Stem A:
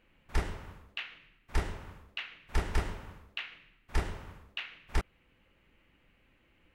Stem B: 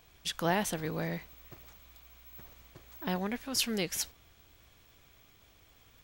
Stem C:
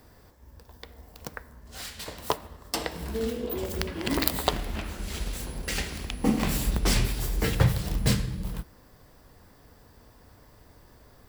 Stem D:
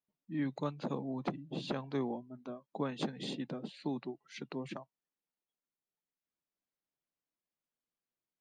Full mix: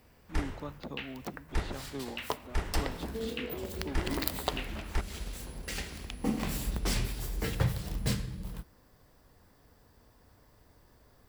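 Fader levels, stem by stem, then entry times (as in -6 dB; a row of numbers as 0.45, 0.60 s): -2.0 dB, off, -7.0 dB, -5.0 dB; 0.00 s, off, 0.00 s, 0.00 s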